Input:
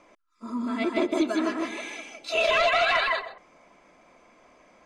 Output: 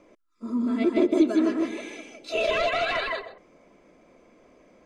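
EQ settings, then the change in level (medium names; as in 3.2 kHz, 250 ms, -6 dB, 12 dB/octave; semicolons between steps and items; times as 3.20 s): resonant low shelf 620 Hz +7.5 dB, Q 1.5; -4.0 dB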